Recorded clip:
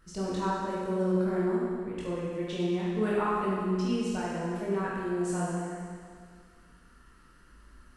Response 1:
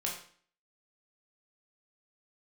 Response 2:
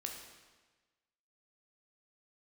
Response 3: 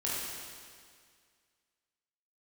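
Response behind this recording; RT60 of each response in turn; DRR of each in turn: 3; 0.50 s, 1.3 s, 2.0 s; -2.5 dB, 1.0 dB, -7.5 dB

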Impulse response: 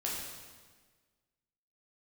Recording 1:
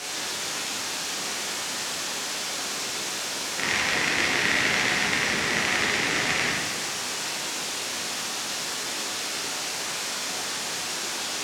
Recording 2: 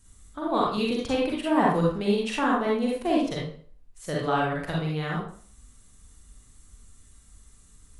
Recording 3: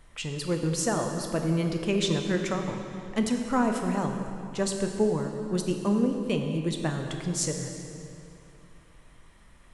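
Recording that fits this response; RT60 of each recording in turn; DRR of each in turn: 1; 1.5 s, 0.50 s, 2.7 s; -5.0 dB, -4.5 dB, 3.0 dB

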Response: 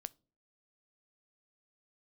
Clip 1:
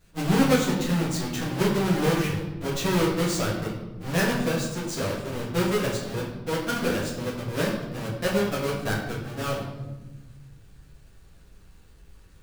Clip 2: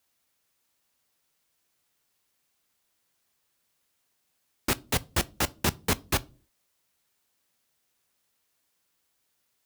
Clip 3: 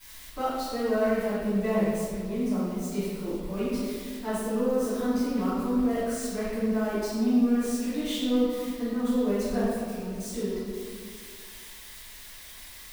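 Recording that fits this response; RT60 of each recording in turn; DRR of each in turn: 2; 1.2 s, 0.40 s, 2.0 s; -7.5 dB, 17.0 dB, -17.0 dB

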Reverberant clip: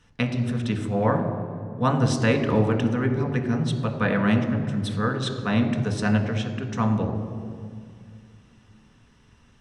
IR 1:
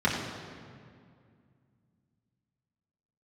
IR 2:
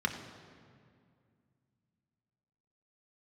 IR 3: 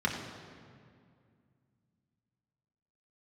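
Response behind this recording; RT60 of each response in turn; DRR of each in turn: 2; 2.2 s, 2.2 s, 2.2 s; -6.5 dB, 3.0 dB, -2.0 dB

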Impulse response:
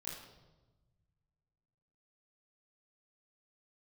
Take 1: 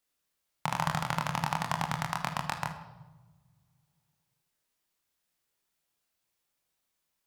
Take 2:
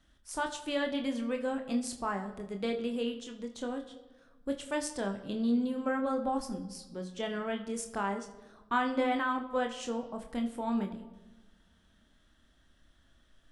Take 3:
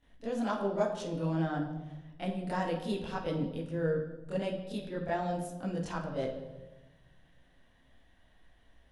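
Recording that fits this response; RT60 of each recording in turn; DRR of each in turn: 3; 1.2 s, 1.2 s, 1.2 s; 0.0 dB, 4.5 dB, -10.0 dB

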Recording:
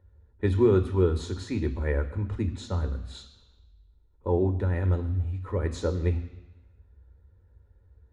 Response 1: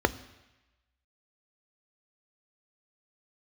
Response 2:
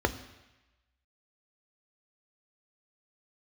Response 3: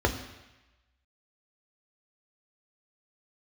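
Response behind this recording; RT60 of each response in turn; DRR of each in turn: 2; 1.0 s, 1.0 s, 1.0 s; 12.5 dB, 8.0 dB, 3.0 dB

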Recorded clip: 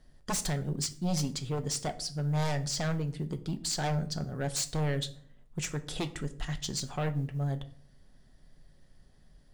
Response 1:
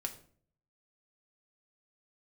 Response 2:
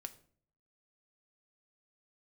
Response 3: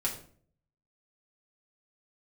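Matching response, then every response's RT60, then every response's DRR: 2; 0.50 s, no single decay rate, 0.50 s; 3.0 dB, 7.5 dB, -4.5 dB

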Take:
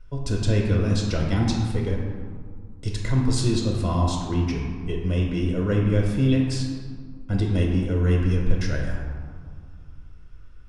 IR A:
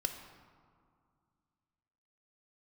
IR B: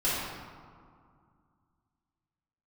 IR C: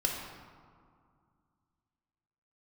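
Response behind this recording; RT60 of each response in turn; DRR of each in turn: C; 2.2 s, 2.2 s, 2.2 s; 5.0 dB, -11.0 dB, -1.0 dB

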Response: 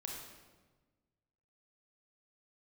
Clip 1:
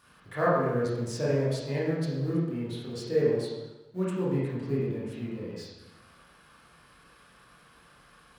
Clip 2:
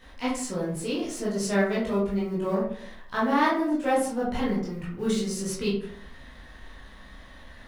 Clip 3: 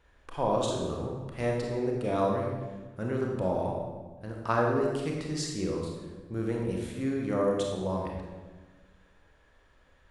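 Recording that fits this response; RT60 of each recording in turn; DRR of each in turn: 3; 1.0 s, 0.60 s, 1.3 s; -8.0 dB, -8.5 dB, -1.0 dB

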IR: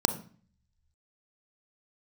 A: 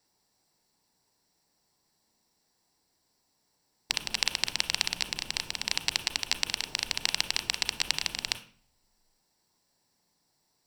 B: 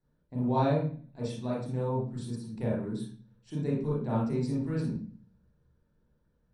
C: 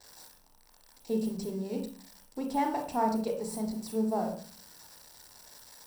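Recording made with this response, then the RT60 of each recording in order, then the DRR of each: A; 0.45 s, 0.45 s, 0.45 s; 10.0 dB, -6.5 dB, 2.0 dB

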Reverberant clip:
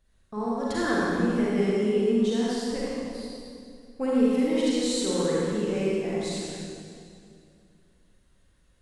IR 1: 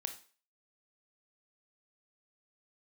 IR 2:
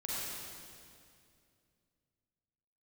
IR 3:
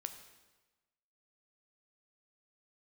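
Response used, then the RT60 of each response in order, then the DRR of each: 2; 0.40 s, 2.4 s, 1.2 s; 6.0 dB, -7.5 dB, 7.0 dB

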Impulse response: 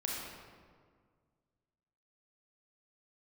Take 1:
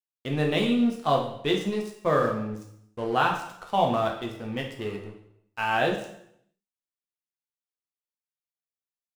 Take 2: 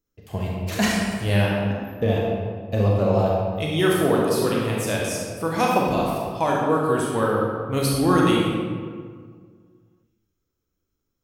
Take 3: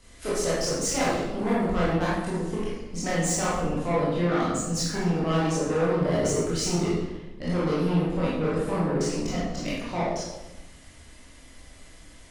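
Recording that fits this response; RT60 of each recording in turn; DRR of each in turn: 2; 0.70 s, 1.8 s, 1.0 s; 0.5 dB, -3.5 dB, -9.0 dB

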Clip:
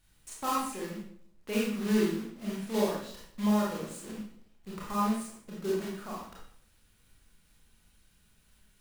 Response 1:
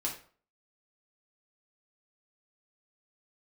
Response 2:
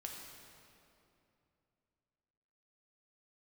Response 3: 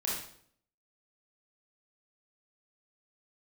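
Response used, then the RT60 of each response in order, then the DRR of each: 3; 0.45 s, 2.8 s, 0.60 s; -3.0 dB, -0.5 dB, -5.5 dB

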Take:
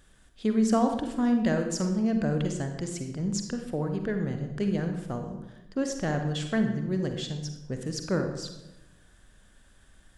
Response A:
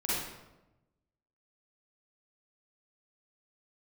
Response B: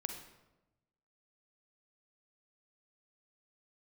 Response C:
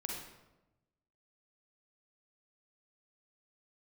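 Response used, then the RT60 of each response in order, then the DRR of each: B; 1.0 s, 1.0 s, 1.0 s; -9.5 dB, 5.0 dB, -1.0 dB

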